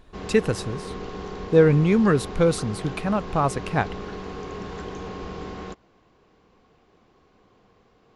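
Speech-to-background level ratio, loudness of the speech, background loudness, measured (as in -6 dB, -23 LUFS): 13.5 dB, -22.0 LUFS, -35.5 LUFS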